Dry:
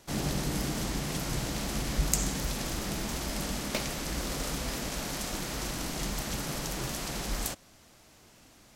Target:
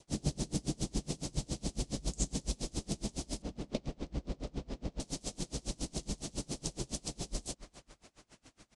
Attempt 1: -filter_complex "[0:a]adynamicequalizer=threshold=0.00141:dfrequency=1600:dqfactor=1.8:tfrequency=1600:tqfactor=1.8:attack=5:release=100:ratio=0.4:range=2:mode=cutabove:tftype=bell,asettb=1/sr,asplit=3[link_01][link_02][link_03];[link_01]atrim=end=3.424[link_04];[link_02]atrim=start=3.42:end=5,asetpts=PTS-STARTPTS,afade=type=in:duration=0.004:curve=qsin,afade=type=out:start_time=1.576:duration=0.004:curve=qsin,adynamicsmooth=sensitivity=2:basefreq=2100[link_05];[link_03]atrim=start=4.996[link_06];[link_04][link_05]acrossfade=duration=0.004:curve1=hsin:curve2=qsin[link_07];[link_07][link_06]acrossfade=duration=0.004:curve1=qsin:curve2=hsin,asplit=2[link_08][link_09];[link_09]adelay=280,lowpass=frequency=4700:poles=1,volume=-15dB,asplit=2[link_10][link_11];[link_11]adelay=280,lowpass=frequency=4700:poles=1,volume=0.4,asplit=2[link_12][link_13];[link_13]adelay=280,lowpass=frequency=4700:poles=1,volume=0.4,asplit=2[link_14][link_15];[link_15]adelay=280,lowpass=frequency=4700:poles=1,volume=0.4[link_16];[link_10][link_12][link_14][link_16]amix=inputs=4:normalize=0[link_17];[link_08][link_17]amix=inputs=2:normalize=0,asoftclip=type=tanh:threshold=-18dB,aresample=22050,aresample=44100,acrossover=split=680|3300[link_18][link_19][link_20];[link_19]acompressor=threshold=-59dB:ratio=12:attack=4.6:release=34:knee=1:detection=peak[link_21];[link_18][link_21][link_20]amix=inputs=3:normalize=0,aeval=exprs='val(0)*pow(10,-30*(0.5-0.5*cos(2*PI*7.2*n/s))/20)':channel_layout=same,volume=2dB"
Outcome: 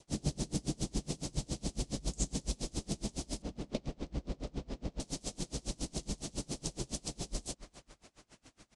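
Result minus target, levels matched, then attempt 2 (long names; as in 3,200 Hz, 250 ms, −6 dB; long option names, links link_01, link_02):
soft clipping: distortion +8 dB
-filter_complex "[0:a]adynamicequalizer=threshold=0.00141:dfrequency=1600:dqfactor=1.8:tfrequency=1600:tqfactor=1.8:attack=5:release=100:ratio=0.4:range=2:mode=cutabove:tftype=bell,asettb=1/sr,asplit=3[link_01][link_02][link_03];[link_01]atrim=end=3.424[link_04];[link_02]atrim=start=3.42:end=5,asetpts=PTS-STARTPTS,afade=type=in:duration=0.004:curve=qsin,afade=type=out:start_time=1.576:duration=0.004:curve=qsin,adynamicsmooth=sensitivity=2:basefreq=2100[link_05];[link_03]atrim=start=4.996[link_06];[link_04][link_05]acrossfade=duration=0.004:curve1=hsin:curve2=qsin[link_07];[link_07][link_06]acrossfade=duration=0.004:curve1=qsin:curve2=hsin,asplit=2[link_08][link_09];[link_09]adelay=280,lowpass=frequency=4700:poles=1,volume=-15dB,asplit=2[link_10][link_11];[link_11]adelay=280,lowpass=frequency=4700:poles=1,volume=0.4,asplit=2[link_12][link_13];[link_13]adelay=280,lowpass=frequency=4700:poles=1,volume=0.4,asplit=2[link_14][link_15];[link_15]adelay=280,lowpass=frequency=4700:poles=1,volume=0.4[link_16];[link_10][link_12][link_14][link_16]amix=inputs=4:normalize=0[link_17];[link_08][link_17]amix=inputs=2:normalize=0,asoftclip=type=tanh:threshold=-8.5dB,aresample=22050,aresample=44100,acrossover=split=680|3300[link_18][link_19][link_20];[link_19]acompressor=threshold=-59dB:ratio=12:attack=4.6:release=34:knee=1:detection=peak[link_21];[link_18][link_21][link_20]amix=inputs=3:normalize=0,aeval=exprs='val(0)*pow(10,-30*(0.5-0.5*cos(2*PI*7.2*n/s))/20)':channel_layout=same,volume=2dB"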